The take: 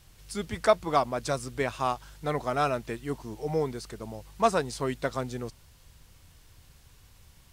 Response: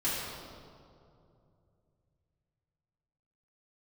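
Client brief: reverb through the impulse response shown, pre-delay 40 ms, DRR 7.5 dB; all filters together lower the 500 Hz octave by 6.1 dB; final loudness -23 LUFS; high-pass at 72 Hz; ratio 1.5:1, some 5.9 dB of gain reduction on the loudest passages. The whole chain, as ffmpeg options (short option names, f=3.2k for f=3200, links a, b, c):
-filter_complex "[0:a]highpass=72,equalizer=f=500:t=o:g=-8.5,acompressor=threshold=-36dB:ratio=1.5,asplit=2[a][b];[1:a]atrim=start_sample=2205,adelay=40[c];[b][c]afir=irnorm=-1:irlink=0,volume=-15.5dB[d];[a][d]amix=inputs=2:normalize=0,volume=13dB"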